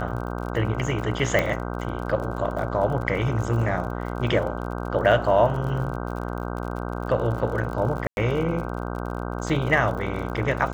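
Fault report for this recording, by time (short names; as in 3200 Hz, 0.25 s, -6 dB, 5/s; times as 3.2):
buzz 60 Hz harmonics 26 -30 dBFS
crackle 49/s -32 dBFS
1.39 pop -8 dBFS
8.07–8.17 gap 0.101 s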